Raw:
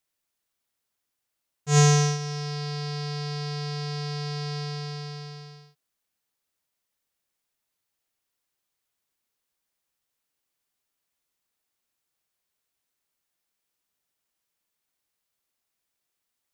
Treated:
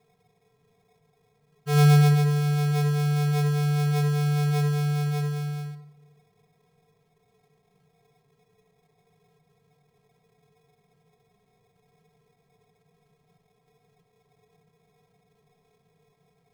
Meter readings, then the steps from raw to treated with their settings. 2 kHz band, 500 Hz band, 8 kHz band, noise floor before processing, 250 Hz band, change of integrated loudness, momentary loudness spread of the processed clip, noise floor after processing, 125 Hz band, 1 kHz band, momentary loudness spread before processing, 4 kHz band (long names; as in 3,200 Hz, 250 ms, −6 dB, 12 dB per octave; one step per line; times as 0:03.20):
+1.0 dB, +1.5 dB, −8.5 dB, −82 dBFS, can't be measured, +3.5 dB, 13 LU, −69 dBFS, +6.0 dB, +1.5 dB, 18 LU, −4.0 dB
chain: compressor on every frequency bin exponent 0.6
decimation without filtering 30×
rectangular room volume 2,100 cubic metres, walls furnished, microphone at 1.6 metres
level −3.5 dB